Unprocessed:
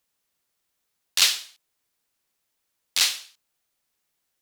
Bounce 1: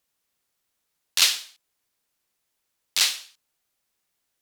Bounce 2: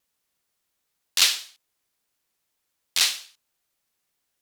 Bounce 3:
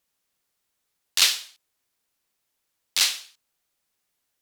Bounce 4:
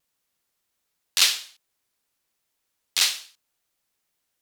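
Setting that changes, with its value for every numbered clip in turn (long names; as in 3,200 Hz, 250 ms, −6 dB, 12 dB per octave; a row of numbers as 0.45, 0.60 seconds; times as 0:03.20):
pitch vibrato, speed: 8.1, 2.9, 5.4, 1.3 Hertz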